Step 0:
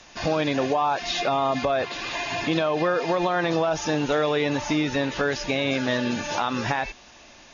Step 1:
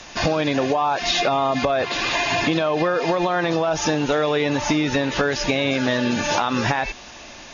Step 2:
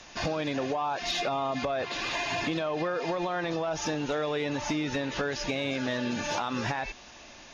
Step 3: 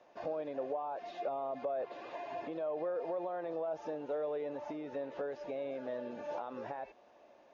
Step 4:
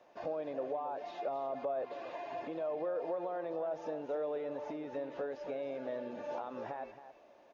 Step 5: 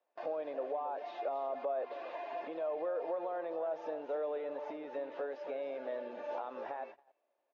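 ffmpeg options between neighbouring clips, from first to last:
ffmpeg -i in.wav -af "acompressor=threshold=-26dB:ratio=6,volume=9dB" out.wav
ffmpeg -i in.wav -af "asoftclip=type=tanh:threshold=-9.5dB,volume=-9dB" out.wav
ffmpeg -i in.wav -af "bandpass=frequency=550:width_type=q:width=2.1:csg=0,volume=-3.5dB" out.wav
ffmpeg -i in.wav -af "aecho=1:1:272:0.251" out.wav
ffmpeg -i in.wav -af "highpass=370,lowpass=4100,agate=range=-21dB:threshold=-50dB:ratio=16:detection=peak,volume=1dB" out.wav

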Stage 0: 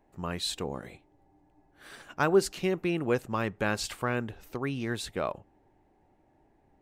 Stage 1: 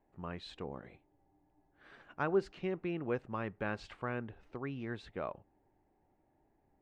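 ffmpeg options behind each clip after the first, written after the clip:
ffmpeg -i in.wav -af "lowpass=2500,volume=-8dB" out.wav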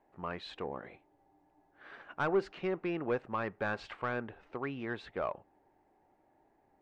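ffmpeg -i in.wav -filter_complex "[0:a]asplit=2[link_01][link_02];[link_02]highpass=frequency=720:poles=1,volume=15dB,asoftclip=type=tanh:threshold=-20dB[link_03];[link_01][link_03]amix=inputs=2:normalize=0,lowpass=frequency=1800:poles=1,volume=-6dB" out.wav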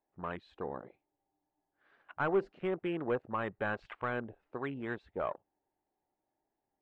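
ffmpeg -i in.wav -af "afwtdn=0.00708" out.wav

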